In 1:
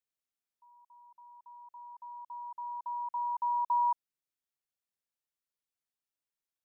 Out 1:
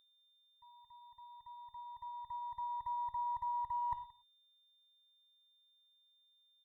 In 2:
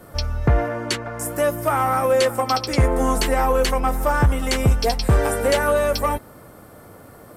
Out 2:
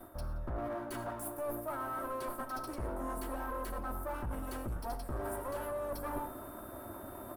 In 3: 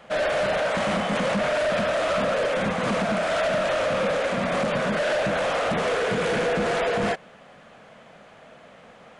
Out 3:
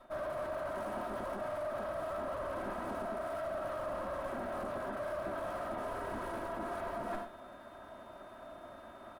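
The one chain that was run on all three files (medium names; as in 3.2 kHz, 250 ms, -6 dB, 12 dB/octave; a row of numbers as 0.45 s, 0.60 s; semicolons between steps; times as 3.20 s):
comb filter that takes the minimum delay 3.1 ms; bass shelf 160 Hz -3 dB; saturation -17 dBFS; band-stop 440 Hz, Q 12; gated-style reverb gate 140 ms flat, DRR 12 dB; whistle 3.6 kHz -57 dBFS; reverse; compression 16:1, threshold -36 dBFS; reverse; high-order bell 3.9 kHz -14 dB 2.3 oct; on a send: delay 175 ms -22.5 dB; on the sum: trim +1 dB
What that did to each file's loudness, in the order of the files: -7.5 LU, -19.5 LU, -15.0 LU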